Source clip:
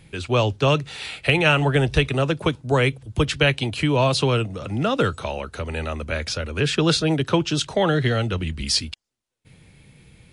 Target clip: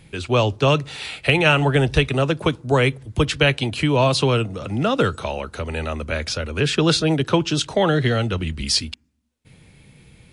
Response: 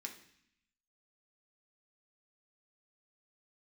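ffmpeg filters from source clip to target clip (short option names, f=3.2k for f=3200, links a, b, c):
-filter_complex "[0:a]asplit=2[a][b];[1:a]atrim=start_sample=2205,lowpass=f=1.6k:w=0.5412,lowpass=f=1.6k:w=1.3066[c];[b][c]afir=irnorm=-1:irlink=0,volume=-15.5dB[d];[a][d]amix=inputs=2:normalize=0,volume=1.5dB"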